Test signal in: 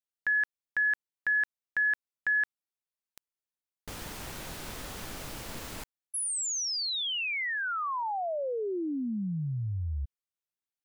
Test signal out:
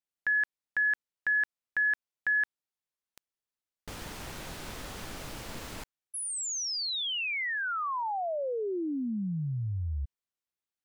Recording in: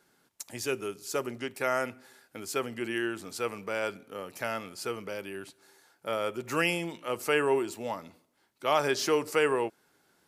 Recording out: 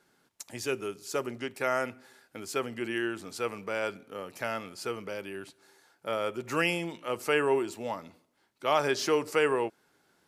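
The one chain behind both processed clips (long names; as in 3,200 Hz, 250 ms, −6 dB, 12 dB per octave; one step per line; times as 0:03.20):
high-shelf EQ 9,700 Hz −6.5 dB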